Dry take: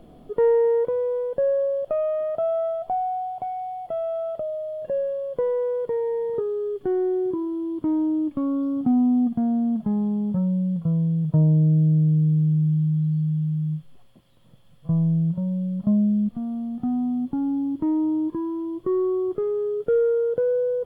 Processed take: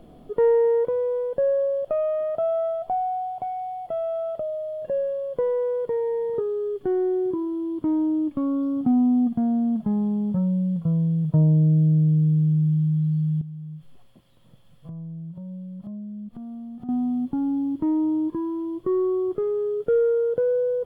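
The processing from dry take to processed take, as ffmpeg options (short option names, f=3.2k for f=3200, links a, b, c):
-filter_complex "[0:a]asettb=1/sr,asplit=3[a][b][c];[a]atrim=end=13.414[d];[b]atrim=start=13.41:end=16.89,asetpts=PTS-STARTPTS,afade=t=in:d=0.004:c=qsin,afade=t=out:st=3.476:d=0.004:c=qsin,acompressor=threshold=-35dB:ratio=6:attack=3.2:release=140:knee=1:detection=peak[e];[c]atrim=start=16.886[f];[d][e]acrossfade=d=0.004:c1=hsin:c2=qsin[g];[g][f]acrossfade=d=0.004:c1=qsin:c2=hsin"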